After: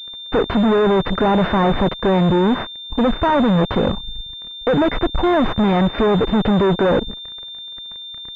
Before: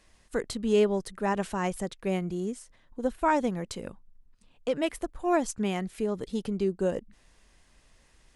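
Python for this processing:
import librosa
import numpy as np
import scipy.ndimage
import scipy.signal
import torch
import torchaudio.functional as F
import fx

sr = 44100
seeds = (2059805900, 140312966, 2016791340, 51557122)

y = fx.fuzz(x, sr, gain_db=44.0, gate_db=-53.0)
y = fx.pwm(y, sr, carrier_hz=3600.0)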